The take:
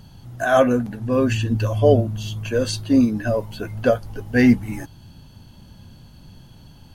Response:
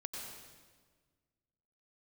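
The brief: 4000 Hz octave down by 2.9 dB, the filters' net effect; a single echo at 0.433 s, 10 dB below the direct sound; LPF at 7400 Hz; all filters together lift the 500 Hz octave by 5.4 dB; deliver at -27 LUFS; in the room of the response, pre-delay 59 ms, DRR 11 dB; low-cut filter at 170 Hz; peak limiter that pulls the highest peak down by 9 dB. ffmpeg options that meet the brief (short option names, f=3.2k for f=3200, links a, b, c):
-filter_complex "[0:a]highpass=170,lowpass=7.4k,equalizer=f=500:t=o:g=6.5,equalizer=f=4k:t=o:g=-3.5,alimiter=limit=-8.5dB:level=0:latency=1,aecho=1:1:433:0.316,asplit=2[a][b];[1:a]atrim=start_sample=2205,adelay=59[c];[b][c]afir=irnorm=-1:irlink=0,volume=-10dB[d];[a][d]amix=inputs=2:normalize=0,volume=-7dB"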